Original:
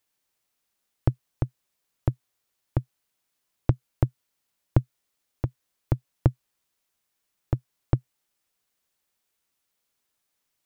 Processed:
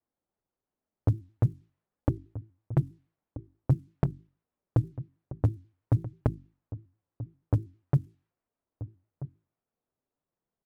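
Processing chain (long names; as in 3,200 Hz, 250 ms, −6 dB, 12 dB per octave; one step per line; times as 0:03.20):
in parallel at +3 dB: brickwall limiter −16 dBFS, peak gain reduction 10.5 dB
on the sum: flanger 0.46 Hz, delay 2.7 ms, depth 7.3 ms, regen +9%
output level in coarse steps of 12 dB
high-pass filter 74 Hz 12 dB per octave
log-companded quantiser 8 bits
slap from a distant wall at 220 metres, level −14 dB
low-pass that shuts in the quiet parts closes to 800 Hz, open at −29.5 dBFS
low-shelf EQ 380 Hz +4.5 dB
mains-hum notches 50/100/150/200/250/300/350 Hz
pitch modulation by a square or saw wave square 6.2 Hz, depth 160 cents
level +2.5 dB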